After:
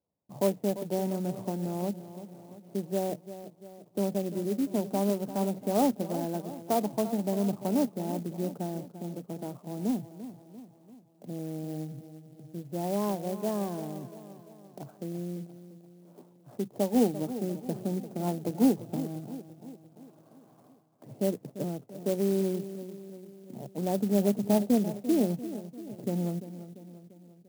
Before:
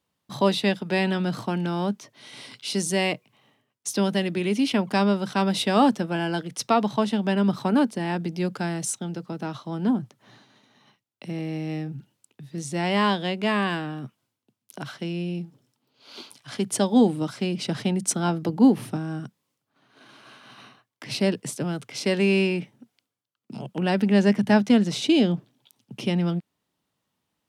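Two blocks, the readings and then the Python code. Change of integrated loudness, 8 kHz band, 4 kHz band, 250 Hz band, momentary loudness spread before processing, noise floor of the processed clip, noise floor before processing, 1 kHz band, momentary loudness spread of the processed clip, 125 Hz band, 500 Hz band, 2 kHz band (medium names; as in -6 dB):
-6.5 dB, -10.5 dB, -17.0 dB, -6.5 dB, 16 LU, -59 dBFS, -80 dBFS, -9.0 dB, 20 LU, -7.0 dB, -4.0 dB, -20.5 dB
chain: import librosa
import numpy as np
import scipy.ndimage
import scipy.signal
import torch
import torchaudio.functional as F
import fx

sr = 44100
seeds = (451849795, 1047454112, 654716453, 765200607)

p1 = fx.ladder_lowpass(x, sr, hz=820.0, resonance_pct=35)
p2 = p1 + fx.echo_feedback(p1, sr, ms=344, feedback_pct=54, wet_db=-13.0, dry=0)
y = fx.clock_jitter(p2, sr, seeds[0], jitter_ms=0.055)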